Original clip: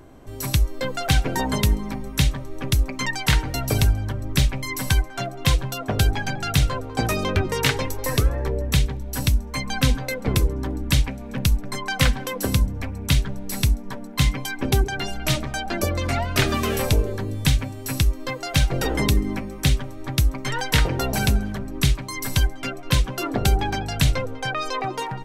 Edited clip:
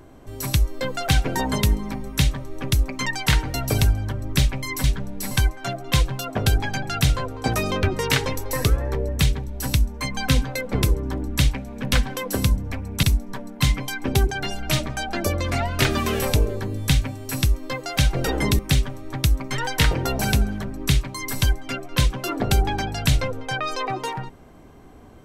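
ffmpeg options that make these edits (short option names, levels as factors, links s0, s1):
-filter_complex "[0:a]asplit=6[s0][s1][s2][s3][s4][s5];[s0]atrim=end=4.842[s6];[s1]atrim=start=13.128:end=13.602[s7];[s2]atrim=start=4.838:end=11.462[s8];[s3]atrim=start=12.028:end=13.132[s9];[s4]atrim=start=13.598:end=19.162[s10];[s5]atrim=start=19.528[s11];[s6][s7]acrossfade=d=0.004:c1=hsin:c2=hsin[s12];[s12][s8]acrossfade=d=0.004:c1=hsin:c2=hsin[s13];[s13][s9]acrossfade=d=0.004:c1=hsin:c2=hsin[s14];[s14][s10]acrossfade=d=0.004:c1=hsin:c2=hsin[s15];[s15][s11]acrossfade=d=0.004:c1=hsin:c2=hsin"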